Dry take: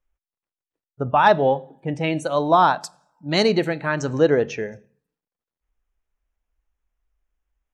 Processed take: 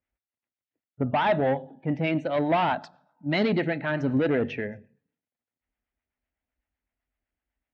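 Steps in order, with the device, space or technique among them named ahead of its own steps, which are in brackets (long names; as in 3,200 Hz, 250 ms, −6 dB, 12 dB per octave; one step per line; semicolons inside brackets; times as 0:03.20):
guitar amplifier with harmonic tremolo (two-band tremolo in antiphase 7.9 Hz, depth 50%, crossover 590 Hz; soft clipping −19 dBFS, distortion −10 dB; loudspeaker in its box 80–3,500 Hz, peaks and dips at 95 Hz +10 dB, 250 Hz +9 dB, 450 Hz −3 dB, 650 Hz +3 dB, 1,100 Hz −6 dB, 2,000 Hz +5 dB)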